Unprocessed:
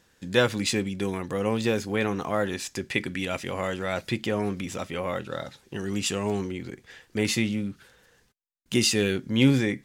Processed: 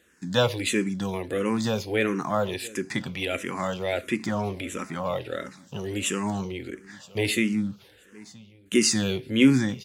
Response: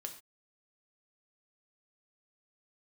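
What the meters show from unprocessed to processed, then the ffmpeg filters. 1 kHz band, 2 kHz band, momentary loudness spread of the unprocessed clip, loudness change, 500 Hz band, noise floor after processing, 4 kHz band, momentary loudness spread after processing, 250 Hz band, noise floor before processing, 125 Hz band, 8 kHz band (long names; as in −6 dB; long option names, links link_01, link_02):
+1.5 dB, 0.0 dB, 13 LU, +0.5 dB, 0.0 dB, −56 dBFS, −0.5 dB, 14 LU, +1.5 dB, −64 dBFS, −1.0 dB, +2.0 dB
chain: -filter_complex "[0:a]highpass=79,aecho=1:1:973|1946:0.0794|0.0238,asplit=2[link_01][link_02];[1:a]atrim=start_sample=2205[link_03];[link_02][link_03]afir=irnorm=-1:irlink=0,volume=-6.5dB[link_04];[link_01][link_04]amix=inputs=2:normalize=0,asplit=2[link_05][link_06];[link_06]afreqshift=-1.5[link_07];[link_05][link_07]amix=inputs=2:normalize=1,volume=1.5dB"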